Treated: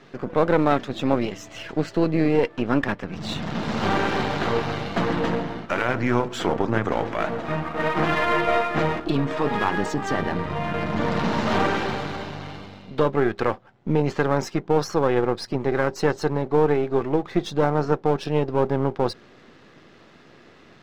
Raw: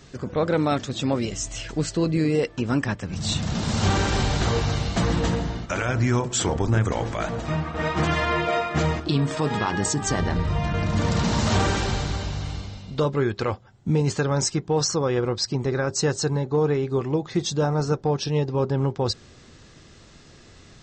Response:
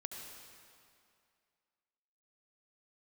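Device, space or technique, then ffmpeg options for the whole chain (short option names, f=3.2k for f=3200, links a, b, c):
crystal radio: -af "highpass=210,lowpass=2.6k,aeval=exprs='if(lt(val(0),0),0.447*val(0),val(0))':c=same,volume=5.5dB"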